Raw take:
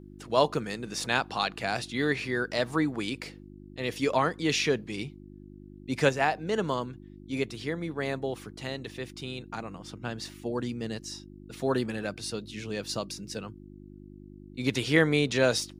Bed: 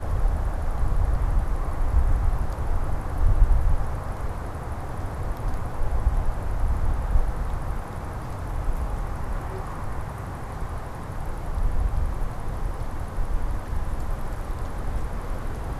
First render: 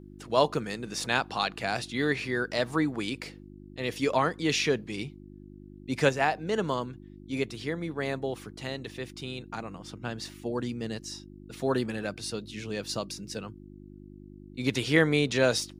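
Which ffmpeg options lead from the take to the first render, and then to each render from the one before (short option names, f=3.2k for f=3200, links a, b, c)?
-af anull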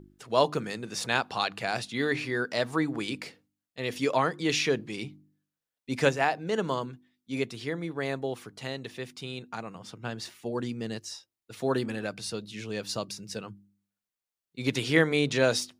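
-af "bandreject=f=50:t=h:w=4,bandreject=f=100:t=h:w=4,bandreject=f=150:t=h:w=4,bandreject=f=200:t=h:w=4,bandreject=f=250:t=h:w=4,bandreject=f=300:t=h:w=4,bandreject=f=350:t=h:w=4"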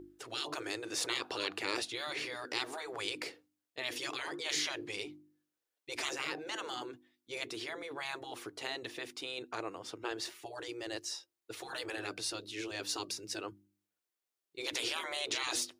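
-af "afftfilt=real='re*lt(hypot(re,im),0.0708)':imag='im*lt(hypot(re,im),0.0708)':win_size=1024:overlap=0.75,lowshelf=f=260:t=q:w=3:g=-7.5"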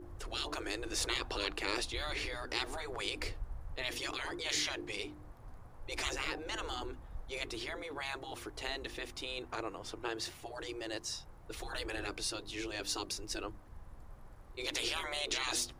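-filter_complex "[1:a]volume=-24dB[a];[0:a][a]amix=inputs=2:normalize=0"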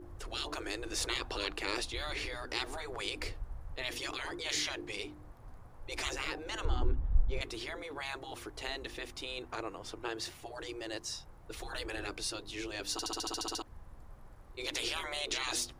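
-filter_complex "[0:a]asettb=1/sr,asplit=3[a][b][c];[a]atrim=end=6.654[d];[b]atrim=start=6.65:end=7.41,asetpts=PTS-STARTPTS,afade=t=in:d=0.004:c=qsin,afade=t=out:st=0.756:d=0.004:c=qsin,aemphasis=mode=reproduction:type=riaa[e];[c]atrim=start=7.406[f];[d][e]acrossfade=d=0.004:c1=hsin:c2=qsin[g];[g][f]acrossfade=d=0.004:c1=qsin:c2=hsin,asplit=11[h][i][j][k][l][m][n][o][p][q][r];[h]atrim=end=12.992[s];[i]atrim=start=12.918:end=12.992[t];[j]atrim=start=12.918:end=12.992[u];[k]atrim=start=12.918:end=12.992[v];[l]atrim=start=12.918:end=12.992[w];[m]atrim=start=12.918:end=12.992[x];[n]atrim=start=12.918:end=12.992[y];[o]atrim=start=12.918:end=12.992[z];[p]atrim=start=12.918:end=12.992[aa];[q]atrim=start=12.918:end=12.992[ab];[r]atrim=start=13.618[ac];[s][t]acrossfade=d=0.004:c1=hsin:c2=hsin[ad];[ad][u]acrossfade=d=0.004:c1=hsin:c2=hsin[ae];[ae][v]acrossfade=d=0.004:c1=hsin:c2=hsin[af];[af][w]acrossfade=d=0.004:c1=hsin:c2=hsin[ag];[ag][x]acrossfade=d=0.004:c1=hsin:c2=hsin[ah];[ah][y]acrossfade=d=0.004:c1=hsin:c2=hsin[ai];[ai][z]acrossfade=d=0.004:c1=hsin:c2=hsin[aj];[aj][aa]acrossfade=d=0.004:c1=hsin:c2=hsin[ak];[ak][ab]acrossfade=d=0.004:c1=hsin:c2=hsin[al];[al][ac]acrossfade=d=0.004:c1=hsin:c2=hsin"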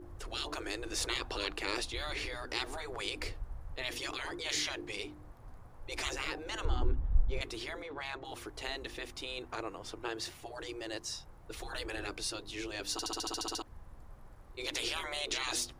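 -filter_complex "[0:a]asettb=1/sr,asplit=3[a][b][c];[a]atrim=end=7.824[d];[b]atrim=start=7.82:end=8.25,asetpts=PTS-STARTPTS,afade=t=in:d=0.004:c=qsin,afade=t=out:st=0.426:d=0.004:c=qsin,adynamicsmooth=sensitivity=5:basefreq=4.5k[e];[c]atrim=start=8.246[f];[d][e]acrossfade=d=0.004:c1=hsin:c2=qsin[g];[g][f]acrossfade=d=0.004:c1=qsin:c2=hsin"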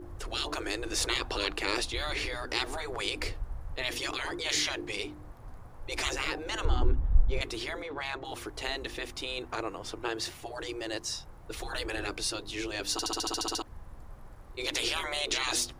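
-af "volume=5dB"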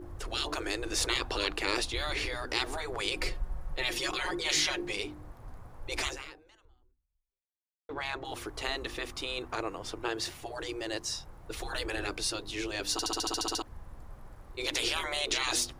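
-filter_complex "[0:a]asettb=1/sr,asplit=3[a][b][c];[a]atrim=end=3.114[d];[b]atrim=start=3.11:end=4.93,asetpts=PTS-STARTPTS,afade=t=in:d=0.004:c=qsin,afade=t=out:st=1.816:d=0.004:c=qsin,aecho=1:1:5.5:0.61,atrim=end_sample=80262[e];[c]atrim=start=4.926[f];[d][e]acrossfade=d=0.004:c1=hsin:c2=qsin[g];[g][f]acrossfade=d=0.004:c1=qsin:c2=hsin,asettb=1/sr,asplit=3[h][i][j];[h]atrim=end=8.514[k];[i]atrim=start=8.51:end=9.48,asetpts=PTS-STARTPTS,afade=t=in:d=0.004:c=qsin,afade=t=out:st=0.966:d=0.004:c=qsin,equalizer=f=1.2k:w=4.8:g=6[l];[j]atrim=start=9.476[m];[k][l]acrossfade=d=0.004:c1=hsin:c2=qsin[n];[n][m]acrossfade=d=0.004:c1=qsin:c2=hsin,asplit=2[o][p];[o]atrim=end=7.89,asetpts=PTS-STARTPTS,afade=t=out:st=6.02:d=1.87:c=exp[q];[p]atrim=start=7.89,asetpts=PTS-STARTPTS,afade=t=in:d=0.004:c=hsin[r];[q][r]concat=n=2:v=0:a=1"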